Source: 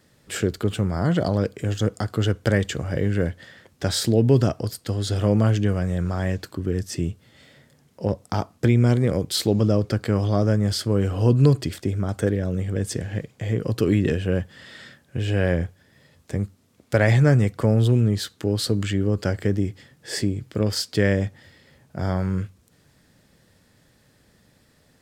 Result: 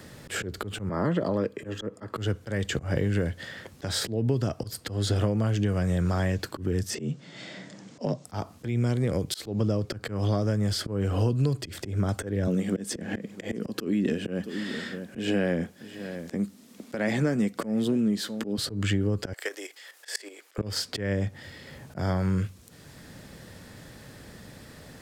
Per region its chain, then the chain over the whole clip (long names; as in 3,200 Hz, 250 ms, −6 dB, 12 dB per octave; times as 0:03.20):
0:00.89–0:02.16: three-way crossover with the lows and the highs turned down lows −15 dB, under 180 Hz, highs −15 dB, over 2,400 Hz + notch comb filter 740 Hz
0:06.95–0:08.25: Butterworth low-pass 7,400 Hz + high-shelf EQ 4,300 Hz +7 dB + frequency shifter +50 Hz
0:12.47–0:18.58: low shelf with overshoot 150 Hz −12 dB, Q 3 + single-tap delay 653 ms −23 dB
0:19.33–0:20.58: Bessel high-pass filter 680 Hz, order 8 + spectral tilt +2.5 dB per octave + output level in coarse steps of 11 dB
whole clip: downward compressor, threshold −24 dBFS; volume swells 158 ms; multiband upward and downward compressor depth 40%; level +3 dB